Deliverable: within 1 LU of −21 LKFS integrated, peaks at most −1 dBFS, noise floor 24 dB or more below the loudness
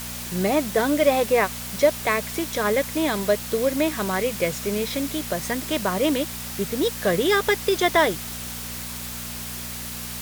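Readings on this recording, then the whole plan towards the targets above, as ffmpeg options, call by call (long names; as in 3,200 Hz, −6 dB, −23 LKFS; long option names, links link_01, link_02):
mains hum 60 Hz; hum harmonics up to 240 Hz; level of the hum −37 dBFS; background noise floor −33 dBFS; target noise floor −48 dBFS; integrated loudness −23.5 LKFS; sample peak −6.0 dBFS; target loudness −21.0 LKFS
→ -af "bandreject=frequency=60:width_type=h:width=4,bandreject=frequency=120:width_type=h:width=4,bandreject=frequency=180:width_type=h:width=4,bandreject=frequency=240:width_type=h:width=4"
-af "afftdn=noise_reduction=15:noise_floor=-33"
-af "volume=2.5dB"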